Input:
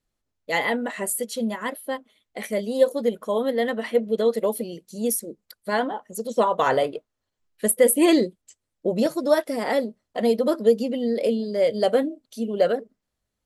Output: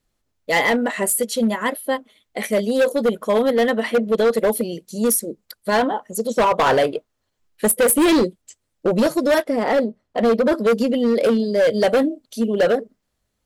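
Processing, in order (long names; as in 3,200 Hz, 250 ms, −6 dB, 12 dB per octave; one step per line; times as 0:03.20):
0:09.42–0:10.53: low-pass filter 1,600 Hz → 3,200 Hz 6 dB per octave
hard clipping −19.5 dBFS, distortion −9 dB
level +7 dB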